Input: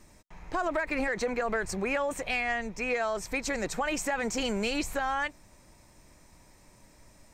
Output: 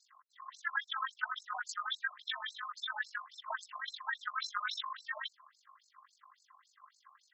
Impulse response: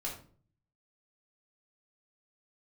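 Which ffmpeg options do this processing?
-af "afftfilt=real='real(if(lt(b,960),b+48*(1-2*mod(floor(b/48),2)),b),0)':imag='imag(if(lt(b,960),b+48*(1-2*mod(floor(b/48),2)),b),0)':win_size=2048:overlap=0.75,tremolo=f=48:d=0.667,afftfilt=real='re*between(b*sr/1024,840*pow(5800/840,0.5+0.5*sin(2*PI*3.6*pts/sr))/1.41,840*pow(5800/840,0.5+0.5*sin(2*PI*3.6*pts/sr))*1.41)':imag='im*between(b*sr/1024,840*pow(5800/840,0.5+0.5*sin(2*PI*3.6*pts/sr))/1.41,840*pow(5800/840,0.5+0.5*sin(2*PI*3.6*pts/sr))*1.41)':win_size=1024:overlap=0.75"

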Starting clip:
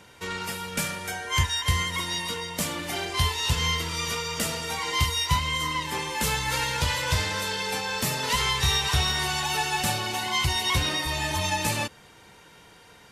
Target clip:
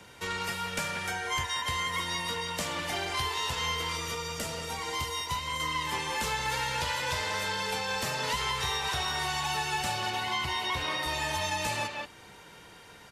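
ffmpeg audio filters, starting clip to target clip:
ffmpeg -i in.wav -filter_complex "[0:a]asettb=1/sr,asplit=3[link_01][link_02][link_03];[link_01]atrim=end=3.974[link_04];[link_02]atrim=start=3.97:end=5.6,asetpts=PTS-STARTPTS,afade=type=in:duration=0.004:curve=qsin,afade=type=out:start_time=1.626:duration=0.004:curve=qsin,equalizer=frequency=2400:width=0.33:gain=-7.5[link_05];[link_03]atrim=start=5.596[link_06];[link_04][link_05]acrossfade=duration=0.004:curve1=hsin:curve2=qsin[link_07];[link_07][link_06]acrossfade=duration=0.004:curve1=qsin:curve2=hsin,asettb=1/sr,asplit=3[link_08][link_09][link_10];[link_08]atrim=end=10.104[link_11];[link_09]atrim=start=10.1:end=11.03,asetpts=PTS-STARTPTS,afade=type=in:duration=0.004:curve=qsin,afade=type=out:start_time=0.926:duration=0.004:curve=qsin,acrossover=split=4700[link_12][link_13];[link_13]acompressor=threshold=-47dB:ratio=4:attack=1:release=60[link_14];[link_12][link_14]amix=inputs=2:normalize=0[link_15];[link_10]atrim=start=11.026[link_16];[link_11][link_15]acrossfade=duration=0.004:curve1=hsin:curve2=qsin[link_17];[link_17][link_16]acrossfade=duration=0.004:curve1=qsin:curve2=hsin,asplit=2[link_18][link_19];[link_19]adelay=180,highpass=300,lowpass=3400,asoftclip=type=hard:threshold=-19dB,volume=-6dB[link_20];[link_18][link_20]amix=inputs=2:normalize=0,acrossover=split=160|400|1600|7800[link_21][link_22][link_23][link_24][link_25];[link_21]acompressor=threshold=-42dB:ratio=4[link_26];[link_22]acompressor=threshold=-51dB:ratio=4[link_27];[link_23]acompressor=threshold=-32dB:ratio=4[link_28];[link_24]acompressor=threshold=-34dB:ratio=4[link_29];[link_25]acompressor=threshold=-49dB:ratio=4[link_30];[link_26][link_27][link_28][link_29][link_30]amix=inputs=5:normalize=0" out.wav

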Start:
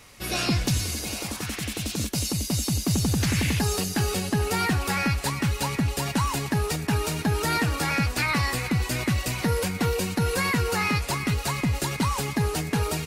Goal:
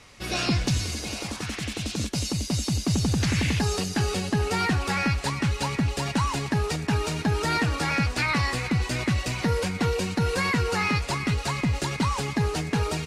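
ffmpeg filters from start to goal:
ffmpeg -i in.wav -af "lowpass=7300" out.wav

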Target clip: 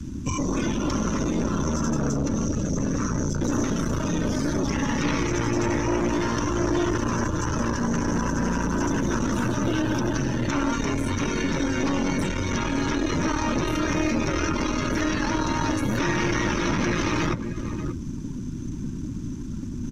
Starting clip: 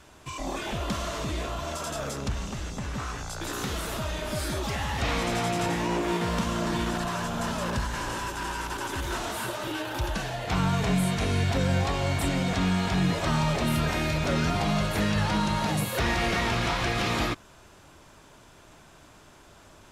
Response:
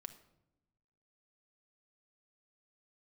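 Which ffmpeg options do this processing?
-filter_complex "[0:a]asplit=2[link_01][link_02];[link_02]acompressor=threshold=-40dB:ratio=4,volume=-0.5dB[link_03];[link_01][link_03]amix=inputs=2:normalize=0,lowshelf=frequency=350:width_type=q:width=3:gain=11.5,afftfilt=real='re*lt(hypot(re,im),1)':imag='im*lt(hypot(re,im),1)':win_size=1024:overlap=0.75,asoftclip=type=tanh:threshold=-24.5dB,asuperstop=centerf=730:order=12:qfactor=4.4,asplit=2[link_04][link_05];[link_05]adelay=583.1,volume=-8dB,highshelf=frequency=4000:gain=-13.1[link_06];[link_04][link_06]amix=inputs=2:normalize=0,aeval=exprs='0.282*(cos(1*acos(clip(val(0)/0.282,-1,1)))-cos(1*PI/2))+0.0398*(cos(2*acos(clip(val(0)/0.282,-1,1)))-cos(2*PI/2))+0.0112*(cos(5*acos(clip(val(0)/0.282,-1,1)))-cos(5*PI/2))+0.0316*(cos(8*acos(clip(val(0)/0.282,-1,1)))-cos(8*PI/2))':channel_layout=same,equalizer=frequency=6000:width_type=o:width=0.44:gain=13,acrossover=split=89|330|2700[link_07][link_08][link_09][link_10];[link_07]acompressor=threshold=-36dB:ratio=4[link_11];[link_08]acompressor=threshold=-29dB:ratio=4[link_12];[link_10]acompressor=threshold=-36dB:ratio=4[link_13];[link_11][link_12][link_09][link_13]amix=inputs=4:normalize=0,afftdn=noise_reduction=13:noise_floor=-36,volume=4dB"

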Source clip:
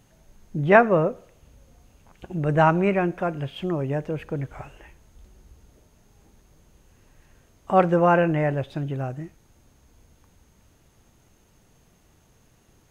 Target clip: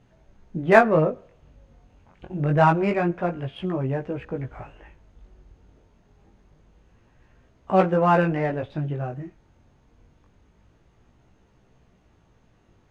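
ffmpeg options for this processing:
ffmpeg -i in.wav -af "adynamicsmooth=sensitivity=2.5:basefreq=3600,flanger=delay=15.5:depth=6.6:speed=0.26,volume=3dB" out.wav

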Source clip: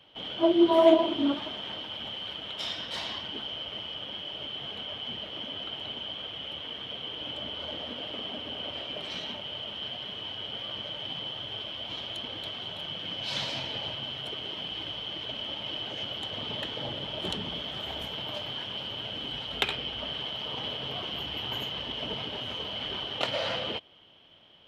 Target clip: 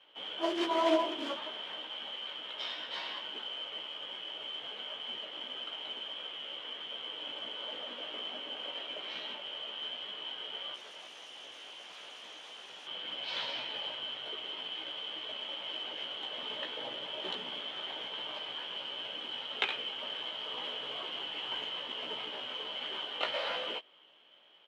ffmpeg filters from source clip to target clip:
ffmpeg -i in.wav -filter_complex "[0:a]equalizer=frequency=700:width_type=o:width=0.41:gain=-4.5,acrusher=bits=3:mode=log:mix=0:aa=0.000001,asettb=1/sr,asplit=3[link_01][link_02][link_03];[link_01]atrim=end=10.744[link_04];[link_02]atrim=start=10.74:end=12.87,asetpts=PTS-STARTPTS,afade=type=in:duration=0.004:curve=qsin,afade=type=out:start_time=2.126:duration=0.004:curve=qsin,aeval=exprs='0.0112*(abs(mod(val(0)/0.0112+3,4)-2)-1)':channel_layout=same[link_05];[link_03]atrim=start=12.866[link_06];[link_04][link_05]acrossfade=duration=0.004:curve1=hsin:curve2=qsin[link_07];[link_07][link_06]acrossfade=duration=0.004:curve1=qsin:curve2=hsin,highpass=460,lowpass=3300,asplit=2[link_08][link_09];[link_09]adelay=16,volume=-4dB[link_10];[link_08][link_10]amix=inputs=2:normalize=0,volume=-3dB" out.wav

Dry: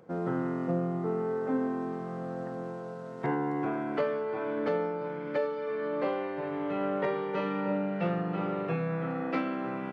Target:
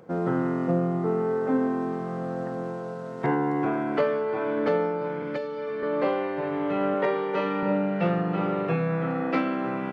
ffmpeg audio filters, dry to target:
ffmpeg -i in.wav -filter_complex "[0:a]asettb=1/sr,asplit=3[link_01][link_02][link_03];[link_01]atrim=end=5.224[link_04];[link_02]atrim=start=5.22:end=5.83,asetpts=PTS-STARTPTS,afade=type=in:duration=0.004:curve=qsin,afade=type=out:start_time=0.606:duration=0.004:curve=qsin,acrossover=split=270|3000[link_05][link_06][link_07];[link_06]acompressor=threshold=-36dB:ratio=6[link_08];[link_05][link_08][link_07]amix=inputs=3:normalize=0[link_09];[link_03]atrim=start=5.826[link_10];[link_04][link_09]acrossfade=duration=0.004:curve1=hsin:curve2=qsin[link_11];[link_11][link_10]acrossfade=duration=0.004:curve1=qsin:curve2=hsin,asettb=1/sr,asplit=3[link_12][link_13][link_14];[link_12]atrim=end=6.944[link_15];[link_13]atrim=start=6.94:end=7.63,asetpts=PTS-STARTPTS,afade=type=in:duration=0.004:curve=qsin,afade=type=out:start_time=0.686:duration=0.004:curve=qsin,highpass=210[link_16];[link_14]atrim=start=7.626[link_17];[link_15][link_16]acrossfade=duration=0.004:curve1=hsin:curve2=qsin[link_18];[link_18][link_17]acrossfade=duration=0.004:curve1=qsin:curve2=hsin,volume=5.5dB" out.wav

